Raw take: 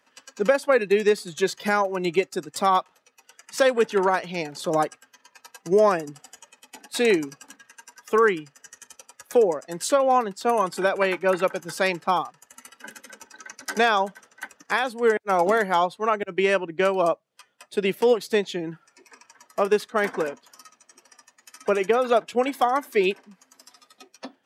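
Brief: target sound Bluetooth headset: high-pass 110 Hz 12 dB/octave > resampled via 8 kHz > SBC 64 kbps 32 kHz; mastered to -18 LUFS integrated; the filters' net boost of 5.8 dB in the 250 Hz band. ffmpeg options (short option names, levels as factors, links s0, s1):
-af "highpass=110,equalizer=f=250:t=o:g=8.5,aresample=8000,aresample=44100,volume=1.5" -ar 32000 -c:a sbc -b:a 64k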